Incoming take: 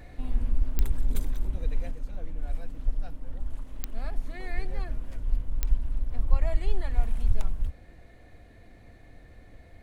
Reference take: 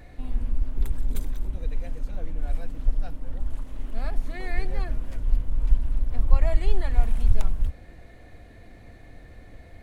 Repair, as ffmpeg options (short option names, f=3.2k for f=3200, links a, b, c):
-af "adeclick=t=4,asetnsamples=n=441:p=0,asendcmd='1.91 volume volume 4.5dB',volume=0dB"